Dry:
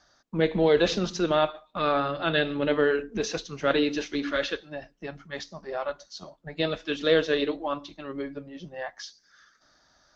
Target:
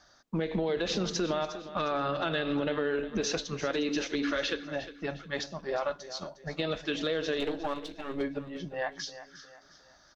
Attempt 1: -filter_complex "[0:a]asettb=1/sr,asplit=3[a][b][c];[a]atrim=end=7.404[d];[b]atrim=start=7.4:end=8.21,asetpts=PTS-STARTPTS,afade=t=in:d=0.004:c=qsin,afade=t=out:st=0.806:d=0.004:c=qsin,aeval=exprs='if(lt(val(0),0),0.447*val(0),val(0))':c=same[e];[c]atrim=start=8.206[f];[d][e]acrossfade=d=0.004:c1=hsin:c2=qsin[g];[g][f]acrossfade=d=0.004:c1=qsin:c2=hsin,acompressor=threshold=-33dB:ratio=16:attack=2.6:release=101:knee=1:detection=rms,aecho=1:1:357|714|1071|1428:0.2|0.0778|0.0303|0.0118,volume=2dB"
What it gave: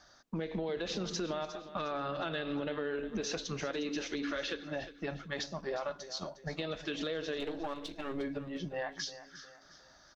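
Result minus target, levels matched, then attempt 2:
compressor: peak gain reduction +6 dB
-filter_complex "[0:a]asettb=1/sr,asplit=3[a][b][c];[a]atrim=end=7.404[d];[b]atrim=start=7.4:end=8.21,asetpts=PTS-STARTPTS,afade=t=in:d=0.004:c=qsin,afade=t=out:st=0.806:d=0.004:c=qsin,aeval=exprs='if(lt(val(0),0),0.447*val(0),val(0))':c=same[e];[c]atrim=start=8.206[f];[d][e]acrossfade=d=0.004:c1=hsin:c2=qsin[g];[g][f]acrossfade=d=0.004:c1=qsin:c2=hsin,acompressor=threshold=-26.5dB:ratio=16:attack=2.6:release=101:knee=1:detection=rms,aecho=1:1:357|714|1071|1428:0.2|0.0778|0.0303|0.0118,volume=2dB"

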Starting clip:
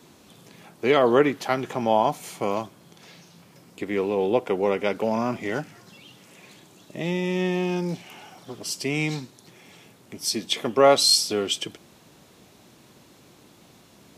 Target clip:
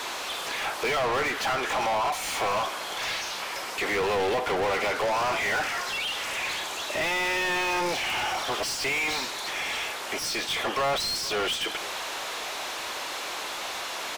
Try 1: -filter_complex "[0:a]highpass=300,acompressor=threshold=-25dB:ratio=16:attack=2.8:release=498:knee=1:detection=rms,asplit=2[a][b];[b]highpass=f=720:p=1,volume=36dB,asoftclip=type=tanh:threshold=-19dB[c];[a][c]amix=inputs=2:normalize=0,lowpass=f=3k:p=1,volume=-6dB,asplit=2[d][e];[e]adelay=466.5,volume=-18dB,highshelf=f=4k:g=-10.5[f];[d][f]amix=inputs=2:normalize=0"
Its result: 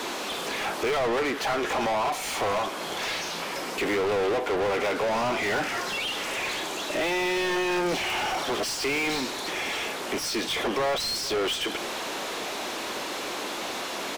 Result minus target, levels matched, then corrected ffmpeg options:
250 Hz band +6.5 dB
-filter_complex "[0:a]highpass=690,acompressor=threshold=-25dB:ratio=16:attack=2.8:release=498:knee=1:detection=rms,asplit=2[a][b];[b]highpass=f=720:p=1,volume=36dB,asoftclip=type=tanh:threshold=-19dB[c];[a][c]amix=inputs=2:normalize=0,lowpass=f=3k:p=1,volume=-6dB,asplit=2[d][e];[e]adelay=466.5,volume=-18dB,highshelf=f=4k:g=-10.5[f];[d][f]amix=inputs=2:normalize=0"

